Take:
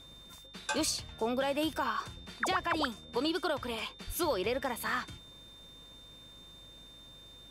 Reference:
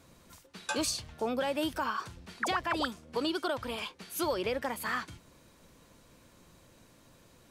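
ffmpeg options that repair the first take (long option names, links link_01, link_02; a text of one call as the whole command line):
ffmpeg -i in.wav -filter_complex "[0:a]bandreject=frequency=50.1:width_type=h:width=4,bandreject=frequency=100.2:width_type=h:width=4,bandreject=frequency=150.3:width_type=h:width=4,bandreject=frequency=200.4:width_type=h:width=4,bandreject=frequency=250.5:width_type=h:width=4,bandreject=frequency=3600:width=30,asplit=3[link_01][link_02][link_03];[link_01]afade=type=out:start_time=4.06:duration=0.02[link_04];[link_02]highpass=frequency=140:width=0.5412,highpass=frequency=140:width=1.3066,afade=type=in:start_time=4.06:duration=0.02,afade=type=out:start_time=4.18:duration=0.02[link_05];[link_03]afade=type=in:start_time=4.18:duration=0.02[link_06];[link_04][link_05][link_06]amix=inputs=3:normalize=0" out.wav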